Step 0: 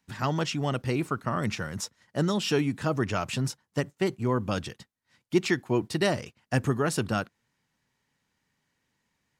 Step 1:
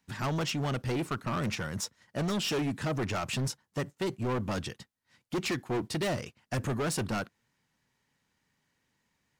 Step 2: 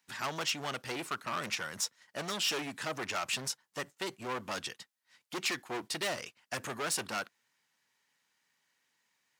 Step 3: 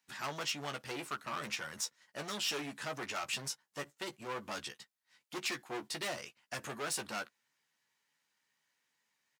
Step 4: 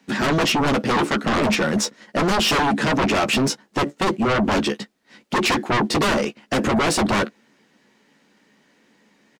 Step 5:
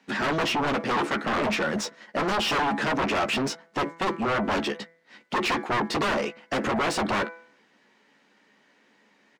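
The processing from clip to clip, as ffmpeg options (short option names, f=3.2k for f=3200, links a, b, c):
-af "asoftclip=type=hard:threshold=-27.5dB"
-af "highpass=f=1.2k:p=1,volume=2.5dB"
-filter_complex "[0:a]asplit=2[a][b];[b]adelay=14,volume=-7dB[c];[a][c]amix=inputs=2:normalize=0,volume=-4.5dB"
-af "firequalizer=gain_entry='entry(130,0);entry(200,15);entry(940,-3);entry(13000,-18)':delay=0.05:min_phase=1,aeval=exprs='0.075*sin(PI/2*4.47*val(0)/0.075)':c=same,volume=7dB"
-filter_complex "[0:a]bandreject=f=166.3:t=h:w=4,bandreject=f=332.6:t=h:w=4,bandreject=f=498.9:t=h:w=4,bandreject=f=665.2:t=h:w=4,bandreject=f=831.5:t=h:w=4,bandreject=f=997.8:t=h:w=4,bandreject=f=1.1641k:t=h:w=4,bandreject=f=1.3304k:t=h:w=4,bandreject=f=1.4967k:t=h:w=4,bandreject=f=1.663k:t=h:w=4,bandreject=f=1.8293k:t=h:w=4,bandreject=f=1.9956k:t=h:w=4,bandreject=f=2.1619k:t=h:w=4,bandreject=f=2.3282k:t=h:w=4,asplit=2[a][b];[b]highpass=f=720:p=1,volume=11dB,asoftclip=type=tanh:threshold=-12.5dB[c];[a][c]amix=inputs=2:normalize=0,lowpass=f=2.7k:p=1,volume=-6dB,volume=-5.5dB"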